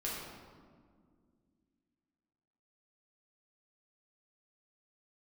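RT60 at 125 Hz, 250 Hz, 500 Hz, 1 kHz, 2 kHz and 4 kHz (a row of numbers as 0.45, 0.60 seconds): 2.8, 3.2, 2.3, 1.7, 1.3, 1.0 seconds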